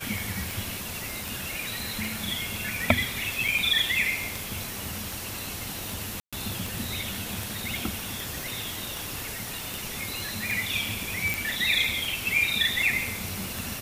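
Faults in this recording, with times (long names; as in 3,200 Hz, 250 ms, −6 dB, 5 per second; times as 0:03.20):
scratch tick 78 rpm
0:01.04: click
0:03.48: drop-out 4.5 ms
0:06.20–0:06.33: drop-out 126 ms
0:08.43: click
0:11.34: click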